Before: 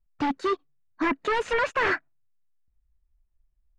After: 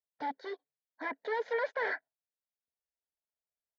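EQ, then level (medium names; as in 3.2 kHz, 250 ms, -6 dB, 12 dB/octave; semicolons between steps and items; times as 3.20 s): resonant high-pass 400 Hz, resonance Q 4; distance through air 110 m; static phaser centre 1.8 kHz, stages 8; -7.5 dB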